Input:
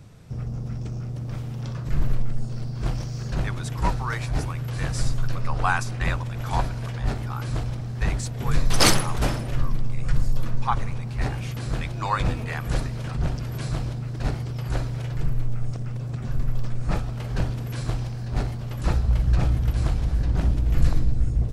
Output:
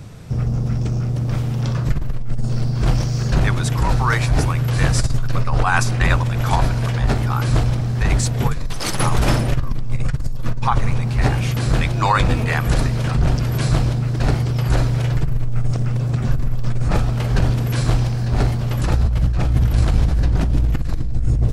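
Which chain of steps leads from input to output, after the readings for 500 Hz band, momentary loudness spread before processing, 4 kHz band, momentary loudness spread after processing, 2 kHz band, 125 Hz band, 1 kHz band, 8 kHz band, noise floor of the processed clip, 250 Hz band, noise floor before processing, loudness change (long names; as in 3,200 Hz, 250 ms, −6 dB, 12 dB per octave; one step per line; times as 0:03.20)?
+7.5 dB, 8 LU, +2.5 dB, 6 LU, +7.0 dB, +8.5 dB, +6.5 dB, +3.0 dB, −22 dBFS, +8.0 dB, −32 dBFS, +7.5 dB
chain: compressor whose output falls as the input rises −23 dBFS, ratio −1
level +8 dB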